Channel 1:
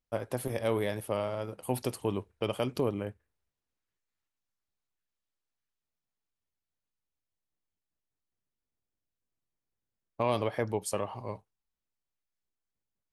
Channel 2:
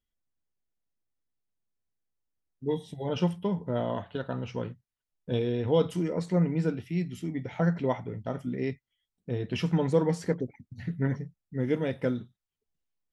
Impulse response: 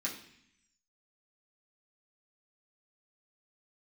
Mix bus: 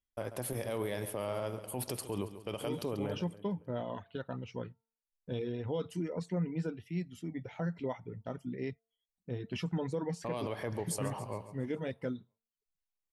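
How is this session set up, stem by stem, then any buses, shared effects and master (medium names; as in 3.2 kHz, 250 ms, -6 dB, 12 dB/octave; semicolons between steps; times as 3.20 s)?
-1.0 dB, 0.05 s, no send, echo send -14.5 dB, expander -48 dBFS; treble shelf 5 kHz +4.5 dB; peak limiter -21.5 dBFS, peak gain reduction 6.5 dB
-6.0 dB, 0.00 s, no send, no echo send, de-hum 226.3 Hz, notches 6; reverb removal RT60 0.63 s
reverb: none
echo: feedback delay 138 ms, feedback 51%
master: peak limiter -25.5 dBFS, peak gain reduction 7.5 dB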